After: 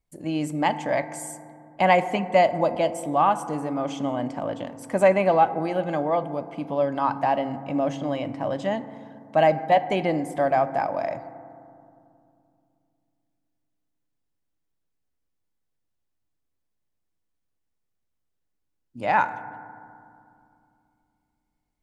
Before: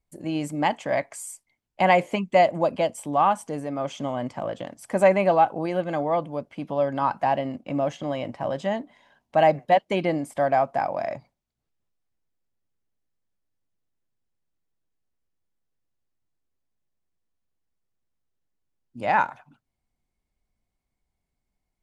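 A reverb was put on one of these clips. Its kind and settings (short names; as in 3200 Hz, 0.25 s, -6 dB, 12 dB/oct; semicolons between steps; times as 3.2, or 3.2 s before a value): FDN reverb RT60 2.5 s, low-frequency decay 1.45×, high-frequency decay 0.25×, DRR 11.5 dB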